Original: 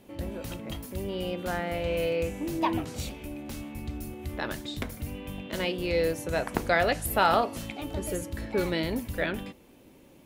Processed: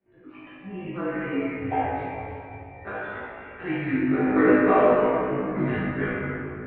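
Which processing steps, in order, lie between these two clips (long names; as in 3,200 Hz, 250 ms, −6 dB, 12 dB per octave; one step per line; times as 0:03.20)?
noise reduction from a noise print of the clip's start 17 dB
on a send: flutter between parallel walls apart 4.9 metres, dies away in 0.67 s
on the sum: time stretch by overlap-add 0.65×, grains 21 ms
rectangular room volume 130 cubic metres, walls hard, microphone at 1.2 metres
single-sideband voice off tune −210 Hz 370–2,500 Hz
level −5.5 dB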